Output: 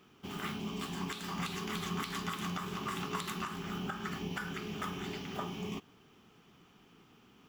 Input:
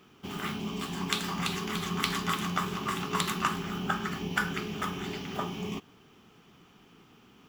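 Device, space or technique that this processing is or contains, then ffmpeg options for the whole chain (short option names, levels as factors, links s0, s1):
stacked limiters: -af "alimiter=limit=0.158:level=0:latency=1:release=262,alimiter=limit=0.0841:level=0:latency=1:release=103,volume=0.631"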